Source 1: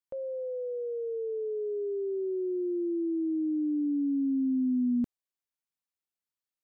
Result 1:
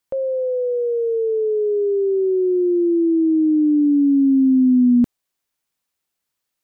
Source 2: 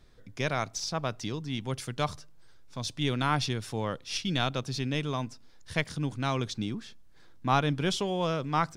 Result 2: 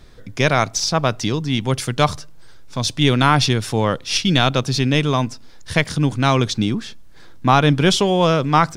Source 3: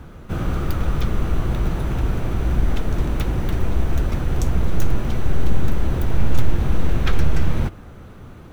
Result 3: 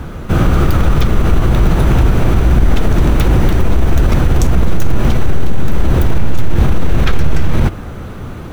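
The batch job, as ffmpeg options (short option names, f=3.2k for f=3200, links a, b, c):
-af "alimiter=level_in=14.5dB:limit=-1dB:release=50:level=0:latency=1,volume=-1dB"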